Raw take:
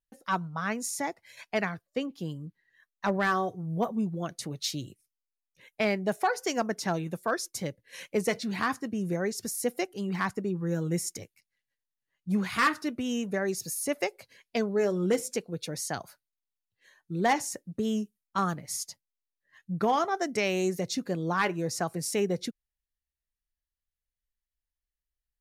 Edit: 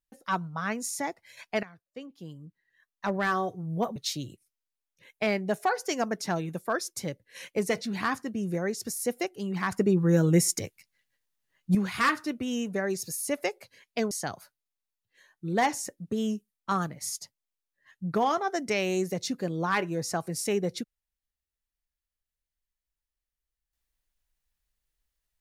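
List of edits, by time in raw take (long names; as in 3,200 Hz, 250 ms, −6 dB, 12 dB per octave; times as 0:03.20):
0:01.63–0:03.46: fade in, from −18.5 dB
0:03.96–0:04.54: remove
0:10.30–0:12.33: clip gain +8 dB
0:14.69–0:15.78: remove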